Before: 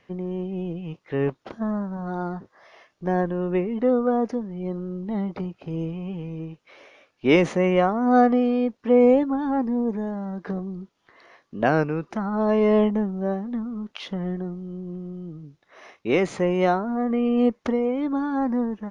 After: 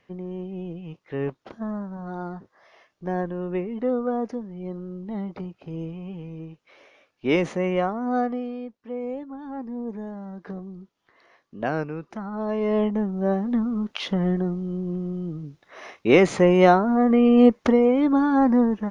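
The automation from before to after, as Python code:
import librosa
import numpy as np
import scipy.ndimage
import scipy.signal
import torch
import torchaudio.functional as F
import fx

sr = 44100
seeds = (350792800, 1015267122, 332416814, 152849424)

y = fx.gain(x, sr, db=fx.line((7.87, -4.0), (9.02, -16.0), (9.99, -6.0), (12.58, -6.0), (13.51, 5.5)))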